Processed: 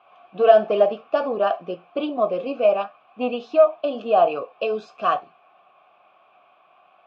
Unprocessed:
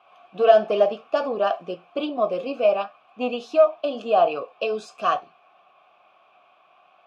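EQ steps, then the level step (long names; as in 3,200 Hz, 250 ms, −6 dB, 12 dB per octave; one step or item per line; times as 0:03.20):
high-frequency loss of the air 190 metres
+2.0 dB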